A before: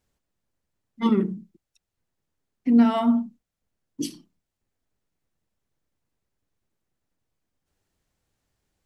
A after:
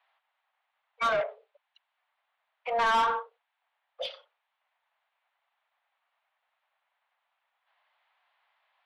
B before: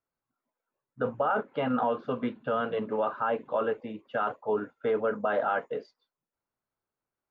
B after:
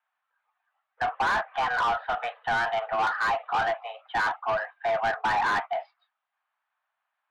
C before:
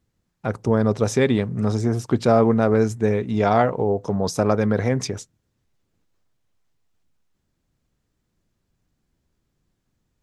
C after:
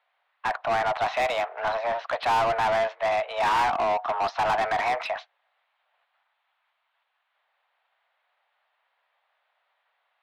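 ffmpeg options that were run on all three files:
-filter_complex "[0:a]highpass=f=490:t=q:w=0.5412,highpass=f=490:t=q:w=1.307,lowpass=f=3500:t=q:w=0.5176,lowpass=f=3500:t=q:w=0.7071,lowpass=f=3500:t=q:w=1.932,afreqshift=230,asplit=2[s0][s1];[s1]highpass=f=720:p=1,volume=25.1,asoftclip=type=tanh:threshold=0.398[s2];[s0][s2]amix=inputs=2:normalize=0,lowpass=f=2300:p=1,volume=0.501,volume=0.398"

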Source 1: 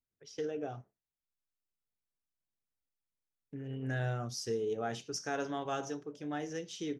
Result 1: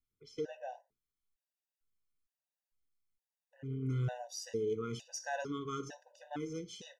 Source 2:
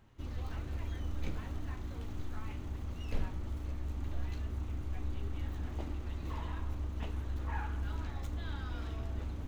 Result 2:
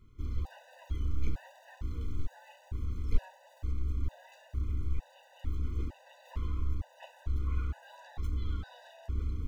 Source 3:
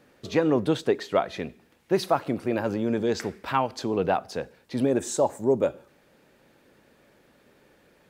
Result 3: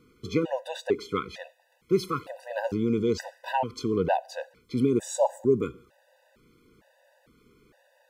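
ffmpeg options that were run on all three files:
-af "lowshelf=f=67:g=10.5,afftfilt=real='re*gt(sin(2*PI*1.1*pts/sr)*(1-2*mod(floor(b*sr/1024/500),2)),0)':imag='im*gt(sin(2*PI*1.1*pts/sr)*(1-2*mod(floor(b*sr/1024/500),2)),0)':win_size=1024:overlap=0.75"

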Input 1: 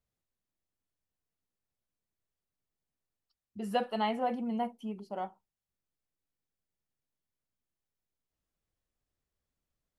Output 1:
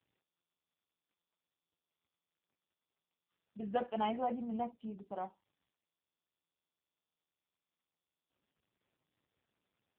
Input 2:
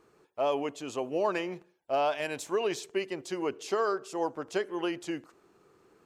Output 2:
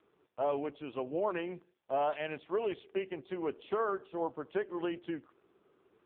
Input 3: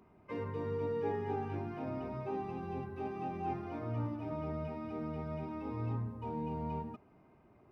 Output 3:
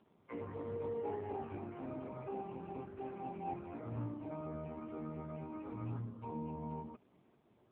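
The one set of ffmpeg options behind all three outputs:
-af "volume=0.708" -ar 8000 -c:a libopencore_amrnb -b:a 5150

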